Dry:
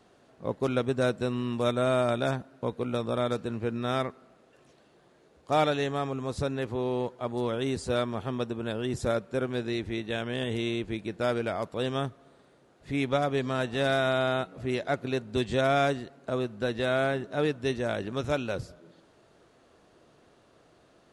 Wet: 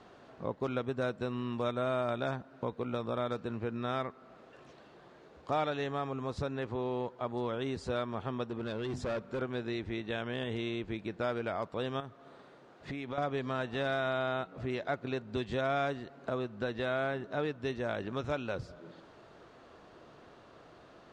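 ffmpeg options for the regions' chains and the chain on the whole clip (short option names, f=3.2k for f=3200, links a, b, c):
-filter_complex "[0:a]asettb=1/sr,asplit=3[a][b][c];[a]atrim=end=8.504[d];[b]atrim=start=8.5:end=9.42,asetpts=PTS-STARTPTS,afade=t=in:d=0.004:c=qsin,afade=t=out:st=0.916:d=0.004:c=qsin,bandreject=f=50:t=h:w=6,bandreject=f=100:t=h:w=6,bandreject=f=150:t=h:w=6,bandreject=f=200:t=h:w=6,bandreject=f=250:t=h:w=6,asoftclip=type=hard:threshold=-28.5dB[e];[c]atrim=start=9.416[f];[d][e]acrossfade=d=0.004:c1=hsin:c2=qsin[g];[g][f]acrossfade=d=0.004:c1=qsin:c2=hsin,asettb=1/sr,asplit=3[h][i][j];[h]atrim=end=12.004[k];[i]atrim=start=12:end=13.18,asetpts=PTS-STARTPTS,afade=t=in:d=0.004:c=qsin,afade=t=out:st=1.176:d=0.004:c=qsin,highpass=f=130:p=1,acompressor=threshold=-34dB:ratio=10:attack=3.2:release=140:knee=1:detection=peak[l];[j]atrim=start=13.176[m];[k][l]acrossfade=d=0.004:c1=hsin:c2=qsin[n];[n][m]acrossfade=d=0.004:c1=qsin:c2=hsin,acompressor=threshold=-44dB:ratio=2,lowpass=5.2k,equalizer=f=1.1k:w=1.1:g=4,volume=3.5dB"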